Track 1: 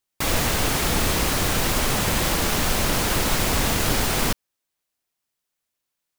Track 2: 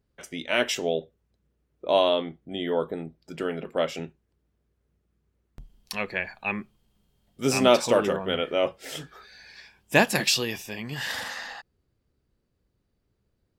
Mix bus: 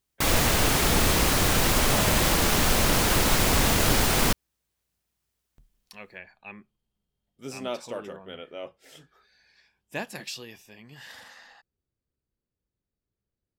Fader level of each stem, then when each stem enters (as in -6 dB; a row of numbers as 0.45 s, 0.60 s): 0.0 dB, -14.0 dB; 0.00 s, 0.00 s